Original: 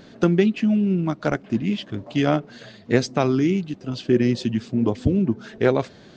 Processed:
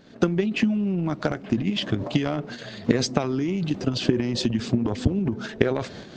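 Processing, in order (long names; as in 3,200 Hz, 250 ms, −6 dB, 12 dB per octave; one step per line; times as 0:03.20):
camcorder AGC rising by 37 dB per second
transient designer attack +8 dB, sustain +12 dB
level −9.5 dB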